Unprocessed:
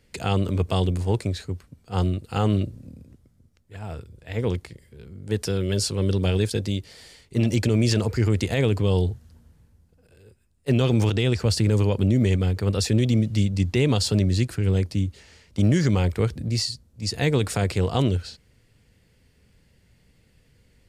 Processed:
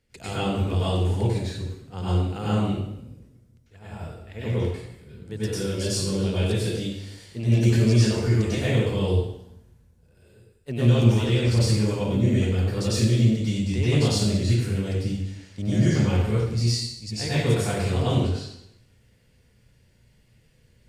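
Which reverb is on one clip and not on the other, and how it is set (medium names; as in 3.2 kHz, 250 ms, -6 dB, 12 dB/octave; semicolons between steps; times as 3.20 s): plate-style reverb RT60 0.8 s, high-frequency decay 0.95×, pre-delay 85 ms, DRR -10 dB; trim -11 dB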